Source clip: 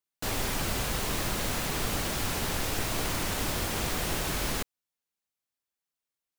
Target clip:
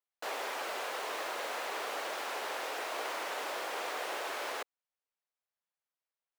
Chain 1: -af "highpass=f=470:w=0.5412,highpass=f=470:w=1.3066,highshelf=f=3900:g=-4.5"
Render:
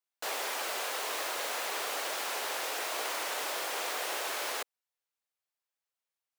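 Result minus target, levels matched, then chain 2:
8 kHz band +5.5 dB
-af "highpass=f=470:w=0.5412,highpass=f=470:w=1.3066,highshelf=f=3900:g=-16"

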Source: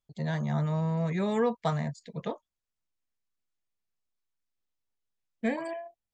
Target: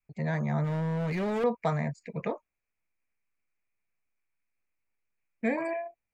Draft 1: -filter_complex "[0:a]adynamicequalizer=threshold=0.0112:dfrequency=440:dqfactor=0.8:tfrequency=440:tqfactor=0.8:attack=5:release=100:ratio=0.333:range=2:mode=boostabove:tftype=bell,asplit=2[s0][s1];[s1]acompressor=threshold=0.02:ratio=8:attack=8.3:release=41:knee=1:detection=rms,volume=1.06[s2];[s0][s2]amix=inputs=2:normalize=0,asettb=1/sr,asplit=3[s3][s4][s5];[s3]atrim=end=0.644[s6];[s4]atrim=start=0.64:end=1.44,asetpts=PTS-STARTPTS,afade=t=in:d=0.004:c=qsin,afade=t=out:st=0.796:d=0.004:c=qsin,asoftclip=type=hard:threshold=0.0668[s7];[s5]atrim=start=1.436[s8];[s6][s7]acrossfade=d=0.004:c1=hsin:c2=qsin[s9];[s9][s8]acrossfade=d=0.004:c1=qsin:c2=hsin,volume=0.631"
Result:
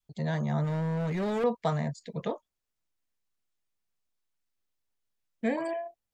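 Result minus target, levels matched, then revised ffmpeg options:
2 kHz band -3.0 dB
-filter_complex "[0:a]adynamicequalizer=threshold=0.0112:dfrequency=440:dqfactor=0.8:tfrequency=440:tqfactor=0.8:attack=5:release=100:ratio=0.333:range=2:mode=boostabove:tftype=bell,asplit=2[s0][s1];[s1]acompressor=threshold=0.02:ratio=8:attack=8.3:release=41:knee=1:detection=rms,lowpass=f=2400:t=q:w=7.6,volume=1.06[s2];[s0][s2]amix=inputs=2:normalize=0,asettb=1/sr,asplit=3[s3][s4][s5];[s3]atrim=end=0.644[s6];[s4]atrim=start=0.64:end=1.44,asetpts=PTS-STARTPTS,afade=t=in:d=0.004:c=qsin,afade=t=out:st=0.796:d=0.004:c=qsin,asoftclip=type=hard:threshold=0.0668[s7];[s5]atrim=start=1.436[s8];[s6][s7]acrossfade=d=0.004:c1=hsin:c2=qsin[s9];[s9][s8]acrossfade=d=0.004:c1=qsin:c2=hsin,volume=0.631"

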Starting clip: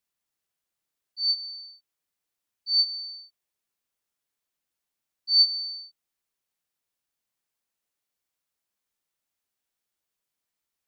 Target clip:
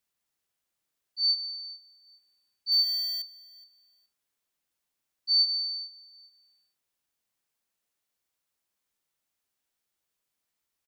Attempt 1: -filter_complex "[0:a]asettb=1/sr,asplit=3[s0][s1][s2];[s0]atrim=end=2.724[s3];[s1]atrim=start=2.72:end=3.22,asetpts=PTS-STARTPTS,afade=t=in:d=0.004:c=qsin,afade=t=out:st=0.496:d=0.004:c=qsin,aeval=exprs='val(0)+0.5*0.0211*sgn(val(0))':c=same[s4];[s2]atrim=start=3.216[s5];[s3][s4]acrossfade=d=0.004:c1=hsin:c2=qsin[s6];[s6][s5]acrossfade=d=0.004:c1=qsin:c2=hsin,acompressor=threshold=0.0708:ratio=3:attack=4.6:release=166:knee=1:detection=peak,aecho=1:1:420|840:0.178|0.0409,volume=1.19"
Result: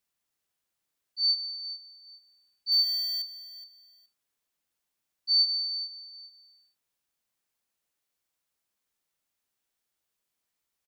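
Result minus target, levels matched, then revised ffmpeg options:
echo-to-direct +7 dB
-filter_complex "[0:a]asettb=1/sr,asplit=3[s0][s1][s2];[s0]atrim=end=2.724[s3];[s1]atrim=start=2.72:end=3.22,asetpts=PTS-STARTPTS,afade=t=in:d=0.004:c=qsin,afade=t=out:st=0.496:d=0.004:c=qsin,aeval=exprs='val(0)+0.5*0.0211*sgn(val(0))':c=same[s4];[s2]atrim=start=3.216[s5];[s3][s4]acrossfade=d=0.004:c1=hsin:c2=qsin[s6];[s6][s5]acrossfade=d=0.004:c1=qsin:c2=hsin,acompressor=threshold=0.0708:ratio=3:attack=4.6:release=166:knee=1:detection=peak,aecho=1:1:420|840:0.0794|0.0183,volume=1.19"

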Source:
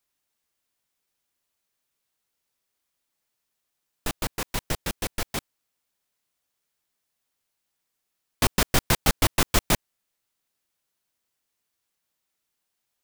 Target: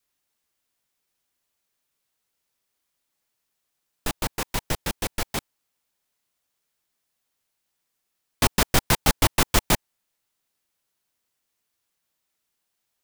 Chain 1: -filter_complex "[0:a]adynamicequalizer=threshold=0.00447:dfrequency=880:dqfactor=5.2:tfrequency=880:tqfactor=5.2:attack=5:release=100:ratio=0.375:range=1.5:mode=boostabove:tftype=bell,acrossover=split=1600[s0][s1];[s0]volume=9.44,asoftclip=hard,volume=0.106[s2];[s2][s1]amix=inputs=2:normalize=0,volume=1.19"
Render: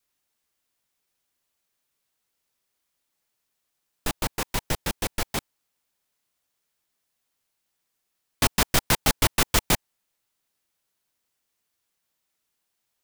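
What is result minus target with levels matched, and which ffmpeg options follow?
overload inside the chain: distortion +12 dB
-filter_complex "[0:a]adynamicequalizer=threshold=0.00447:dfrequency=880:dqfactor=5.2:tfrequency=880:tqfactor=5.2:attack=5:release=100:ratio=0.375:range=1.5:mode=boostabove:tftype=bell,acrossover=split=1600[s0][s1];[s0]volume=4.47,asoftclip=hard,volume=0.224[s2];[s2][s1]amix=inputs=2:normalize=0,volume=1.19"

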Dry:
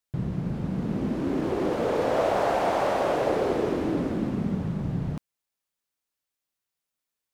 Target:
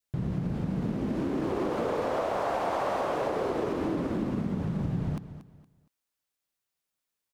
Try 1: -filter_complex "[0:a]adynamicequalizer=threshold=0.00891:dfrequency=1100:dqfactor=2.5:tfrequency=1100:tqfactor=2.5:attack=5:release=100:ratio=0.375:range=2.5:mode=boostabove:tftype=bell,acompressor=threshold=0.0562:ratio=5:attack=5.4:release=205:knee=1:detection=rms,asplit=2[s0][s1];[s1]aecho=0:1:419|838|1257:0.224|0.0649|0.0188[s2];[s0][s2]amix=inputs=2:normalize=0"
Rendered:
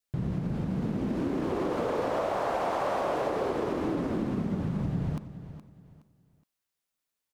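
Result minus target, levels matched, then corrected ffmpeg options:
echo 186 ms late
-filter_complex "[0:a]adynamicequalizer=threshold=0.00891:dfrequency=1100:dqfactor=2.5:tfrequency=1100:tqfactor=2.5:attack=5:release=100:ratio=0.375:range=2.5:mode=boostabove:tftype=bell,acompressor=threshold=0.0562:ratio=5:attack=5.4:release=205:knee=1:detection=rms,asplit=2[s0][s1];[s1]aecho=0:1:233|466|699:0.224|0.0649|0.0188[s2];[s0][s2]amix=inputs=2:normalize=0"

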